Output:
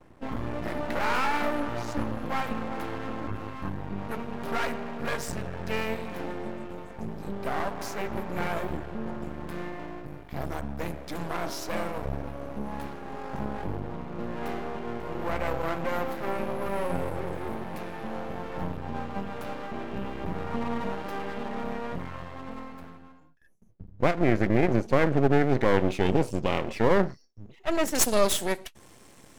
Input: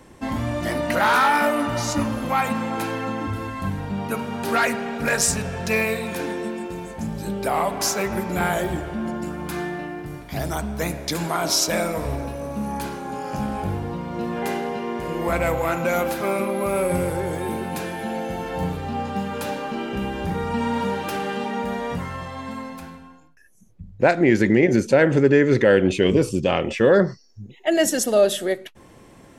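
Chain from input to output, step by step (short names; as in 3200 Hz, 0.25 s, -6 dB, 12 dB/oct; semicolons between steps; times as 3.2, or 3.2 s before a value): gate with hold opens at -44 dBFS; bell 8100 Hz -14 dB 2.5 oct, from 25.74 s -6 dB, from 27.95 s +9.5 dB; half-wave rectifier; gain -2.5 dB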